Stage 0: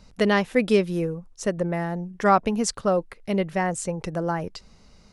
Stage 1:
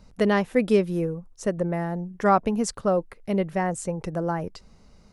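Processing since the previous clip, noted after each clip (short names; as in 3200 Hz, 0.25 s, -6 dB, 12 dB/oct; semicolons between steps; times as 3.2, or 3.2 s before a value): bell 3900 Hz -6 dB 2.5 oct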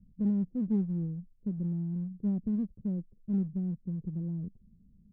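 ladder low-pass 240 Hz, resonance 45%; in parallel at -9 dB: one-sided clip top -36.5 dBFS, bottom -23.5 dBFS; on the sum: gain -2 dB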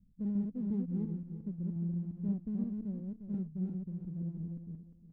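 regenerating reverse delay 0.176 s, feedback 44%, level -2 dB; gain -7 dB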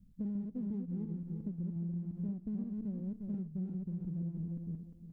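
compressor, threshold -40 dBFS, peak gain reduction 11 dB; on a send at -23.5 dB: reverb RT60 3.1 s, pre-delay 47 ms; on the sum: gain +4.5 dB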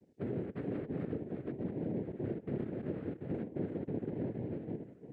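noise vocoder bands 3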